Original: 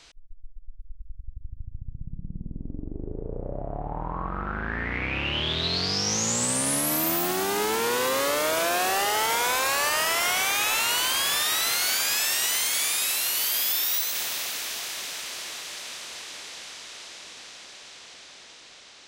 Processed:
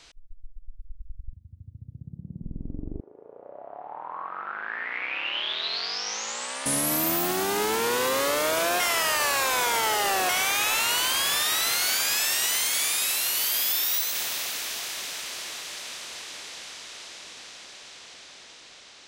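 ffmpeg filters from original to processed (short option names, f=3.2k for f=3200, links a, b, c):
-filter_complex "[0:a]asettb=1/sr,asplit=3[a][b][c];[a]atrim=end=1.334[d];[b]atrim=start=1.33:end=2.42,asetpts=PTS-STARTPTS,afade=t=in:d=0.004:c=qsin,afade=t=out:st=1.086:d=0.004:c=qsin,highpass=f=84:w=0.5412,highpass=f=84:w=1.3066[e];[c]atrim=start=2.416[f];[d][e]acrossfade=d=0.004:c1=hsin:c2=qsin[g];[g][f]acrossfade=d=0.004:c1=qsin:c2=hsin,asettb=1/sr,asplit=3[h][i][j];[h]atrim=end=3.004[k];[i]atrim=start=3:end=6.66,asetpts=PTS-STARTPTS,afade=t=in:d=0.004:c=qsin,afade=t=out:st=3.656:d=0.004:c=qsin,highpass=790,lowpass=4.4k[l];[j]atrim=start=6.656[m];[k][l]acrossfade=d=0.004:c1=hsin:c2=qsin[n];[n][m]acrossfade=d=0.004:c1=qsin:c2=hsin,asplit=3[o][p][q];[o]atrim=end=8.802[r];[p]atrim=start=8.798:end=10.292,asetpts=PTS-STARTPTS,areverse[s];[q]atrim=start=10.288[t];[r][s]acrossfade=d=0.004:c1=hsin:c2=hsin[u];[u][t]acrossfade=d=0.004:c1=hsin:c2=hsin"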